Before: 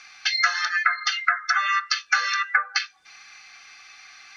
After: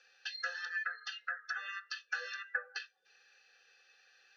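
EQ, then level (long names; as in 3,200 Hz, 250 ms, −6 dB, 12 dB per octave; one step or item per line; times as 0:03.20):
formant filter e
phaser with its sweep stopped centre 430 Hz, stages 8
+5.0 dB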